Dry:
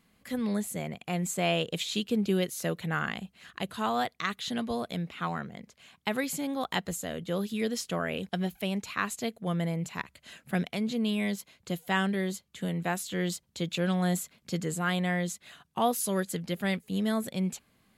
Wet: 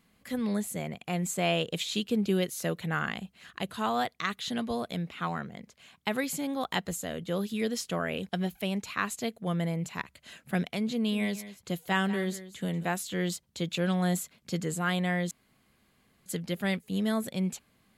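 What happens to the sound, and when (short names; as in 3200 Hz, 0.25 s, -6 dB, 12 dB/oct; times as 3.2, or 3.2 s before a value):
10.93–12.85 echo 0.186 s -14.5 dB
15.31–16.26 room tone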